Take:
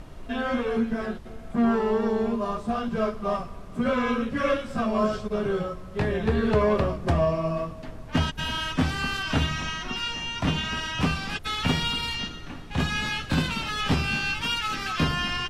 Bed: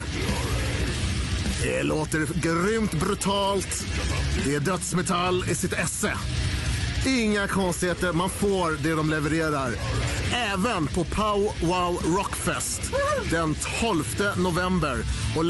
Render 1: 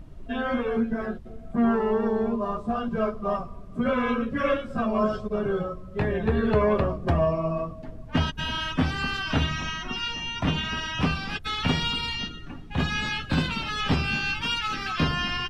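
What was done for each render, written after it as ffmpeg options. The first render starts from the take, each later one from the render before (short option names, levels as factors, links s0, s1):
-af "afftdn=nr=11:nf=-40"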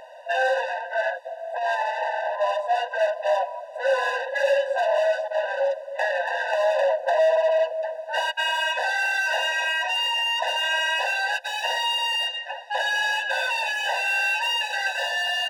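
-filter_complex "[0:a]asplit=2[s0][s1];[s1]highpass=f=720:p=1,volume=28.2,asoftclip=type=tanh:threshold=0.282[s2];[s0][s2]amix=inputs=2:normalize=0,lowpass=f=1600:p=1,volume=0.501,afftfilt=real='re*eq(mod(floor(b*sr/1024/500),2),1)':imag='im*eq(mod(floor(b*sr/1024/500),2),1)':win_size=1024:overlap=0.75"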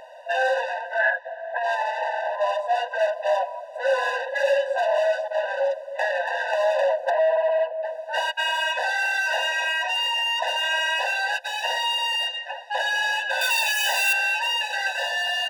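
-filter_complex "[0:a]asplit=3[s0][s1][s2];[s0]afade=t=out:st=0.98:d=0.02[s3];[s1]highpass=460,equalizer=f=1100:t=q:w=4:g=7,equalizer=f=1700:t=q:w=4:g=10,equalizer=f=4600:t=q:w=4:g=-7,lowpass=f=5100:w=0.5412,lowpass=f=5100:w=1.3066,afade=t=in:st=0.98:d=0.02,afade=t=out:st=1.62:d=0.02[s4];[s2]afade=t=in:st=1.62:d=0.02[s5];[s3][s4][s5]amix=inputs=3:normalize=0,asettb=1/sr,asplit=3[s6][s7][s8];[s6]atrim=end=7.104[s9];[s7]atrim=start=7.1:end=7.85,asetpts=PTS-STARTPTS,afade=t=in:d=0.004:c=qsin,afade=t=out:st=0.746:d=0.004:c=qsin,highpass=470,lowpass=2400[s10];[s8]atrim=start=7.846[s11];[s9][s10]acrossfade=d=0.004:c1=hsin:c2=qsin[s12];[s12][s11]acrossfade=d=0.004:c1=qsin:c2=hsin,asettb=1/sr,asplit=3[s13][s14][s15];[s13]atrim=end=13.414[s16];[s14]atrim=start=13.41:end=14.13,asetpts=PTS-STARTPTS,afade=t=in:d=0.004:c=qsin,afade=t=out:st=0.716:d=0.004:c=qsin,aemphasis=mode=production:type=riaa[s17];[s15]atrim=start=14.126[s18];[s16][s17]acrossfade=d=0.004:c1=hsin:c2=qsin[s19];[s19][s18]acrossfade=d=0.004:c1=qsin:c2=hsin"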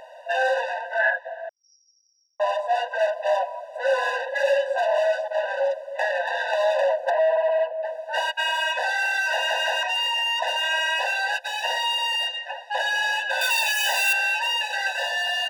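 -filter_complex "[0:a]asettb=1/sr,asplit=3[s0][s1][s2];[s0]atrim=end=1.494[s3];[s1]atrim=start=1.49:end=2.4,asetpts=PTS-STARTPTS,afade=t=in:d=0.004:c=qsin,afade=t=out:st=0.906:d=0.004:c=qsin,asuperpass=centerf=5400:order=12:qfactor=7.9[s4];[s2]atrim=start=2.396[s5];[s3][s4]acrossfade=d=0.004:c1=hsin:c2=qsin[s6];[s6][s5]acrossfade=d=0.004:c1=qsin:c2=hsin,asettb=1/sr,asplit=3[s7][s8][s9];[s7]atrim=end=6.244[s10];[s8]atrim=start=6.24:end=6.74,asetpts=PTS-STARTPTS,afade=t=in:d=0.004:c=qsin,afade=t=out:st=0.496:d=0.004:c=qsin,equalizer=f=3800:t=o:w=0.33:g=5.5[s11];[s9]atrim=start=6.736[s12];[s10][s11]acrossfade=d=0.004:c1=hsin:c2=qsin[s13];[s13][s12]acrossfade=d=0.004:c1=qsin:c2=hsin,asplit=4[s14][s15][s16][s17];[s14]atrim=end=9.492[s18];[s15]atrim=start=9.318:end=9.492[s19];[s16]atrim=start=9.318:end=9.492[s20];[s17]atrim=start=9.828[s21];[s18][s19]acrossfade=d=0.004:c1=hsin:c2=hsin[s22];[s22][s20]acrossfade=d=0.004:c1=hsin:c2=hsin[s23];[s23][s21]acrossfade=d=0.004:c1=hsin:c2=hsin"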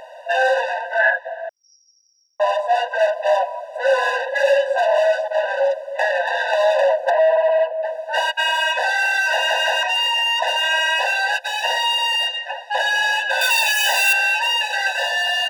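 -af "volume=1.78"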